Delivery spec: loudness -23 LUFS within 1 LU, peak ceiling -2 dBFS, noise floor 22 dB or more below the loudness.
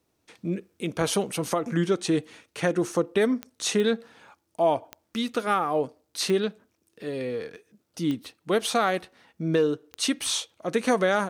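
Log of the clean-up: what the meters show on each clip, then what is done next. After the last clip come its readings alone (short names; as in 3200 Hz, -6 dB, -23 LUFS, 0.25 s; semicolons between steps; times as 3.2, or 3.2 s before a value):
clicks 6; loudness -27.0 LUFS; peak -11.5 dBFS; loudness target -23.0 LUFS
-> de-click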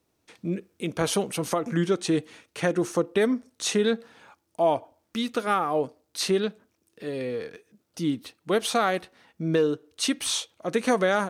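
clicks 0; loudness -27.0 LUFS; peak -11.5 dBFS; loudness target -23.0 LUFS
-> gain +4 dB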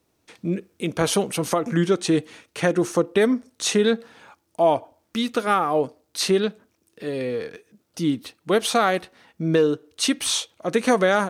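loudness -23.0 LUFS; peak -7.5 dBFS; noise floor -70 dBFS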